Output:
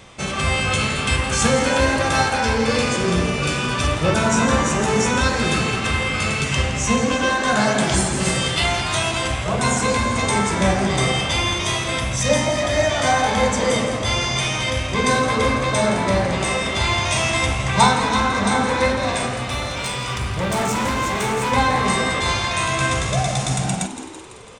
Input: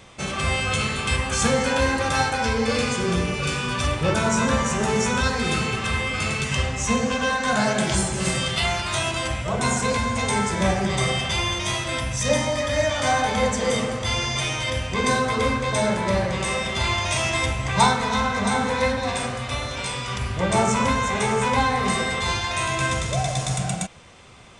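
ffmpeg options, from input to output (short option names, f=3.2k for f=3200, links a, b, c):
-filter_complex "[0:a]asettb=1/sr,asplit=3[a][b][c];[a]atrim=end=19.334[d];[b]atrim=start=19.33:end=21.52,asetpts=PTS-STARTPTS,afade=t=in:d=0.004:c=qsin,afade=t=out:st=2.186:d=0.004:c=qsin,asoftclip=type=hard:threshold=-22dB[e];[c]atrim=start=21.516[f];[d][e]acrossfade=d=0.004:c1=hsin:c2=qsin[g];[g][f]acrossfade=d=0.004:c1=qsin:c2=hsin,asplit=8[h][i][j][k][l][m][n][o];[i]adelay=167,afreqshift=64,volume=-12dB[p];[j]adelay=334,afreqshift=128,volume=-16dB[q];[k]adelay=501,afreqshift=192,volume=-20dB[r];[l]adelay=668,afreqshift=256,volume=-24dB[s];[m]adelay=835,afreqshift=320,volume=-28.1dB[t];[n]adelay=1002,afreqshift=384,volume=-32.1dB[u];[o]adelay=1169,afreqshift=448,volume=-36.1dB[v];[h][p][q][r][s][t][u][v]amix=inputs=8:normalize=0,volume=3dB"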